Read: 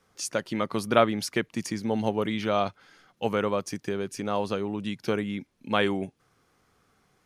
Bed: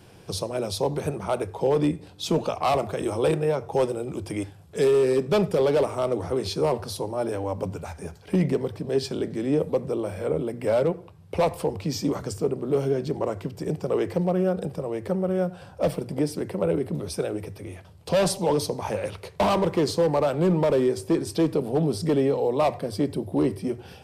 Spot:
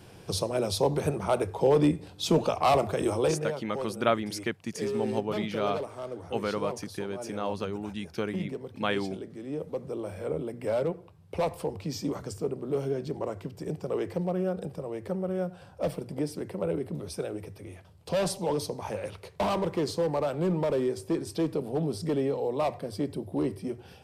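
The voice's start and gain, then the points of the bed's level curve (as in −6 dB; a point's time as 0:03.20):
3.10 s, −4.5 dB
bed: 0:03.10 0 dB
0:03.69 −12.5 dB
0:09.47 −12.5 dB
0:10.10 −6 dB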